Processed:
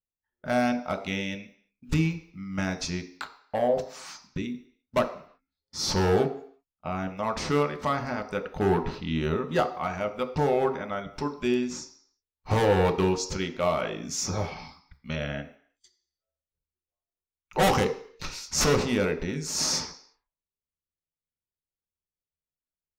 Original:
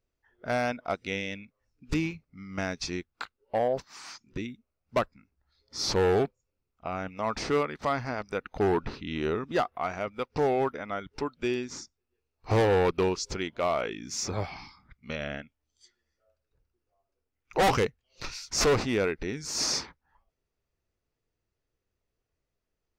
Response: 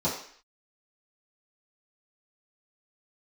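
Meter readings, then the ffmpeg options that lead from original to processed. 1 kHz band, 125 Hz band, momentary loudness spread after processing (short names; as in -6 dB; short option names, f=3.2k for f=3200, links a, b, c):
+1.5 dB, +4.5 dB, 15 LU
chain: -filter_complex "[0:a]crystalizer=i=1:c=0,agate=range=-21dB:threshold=-54dB:ratio=16:detection=peak,asplit=2[a][b];[1:a]atrim=start_sample=2205,asetrate=42777,aresample=44100[c];[b][c]afir=irnorm=-1:irlink=0,volume=-15dB[d];[a][d]amix=inputs=2:normalize=0"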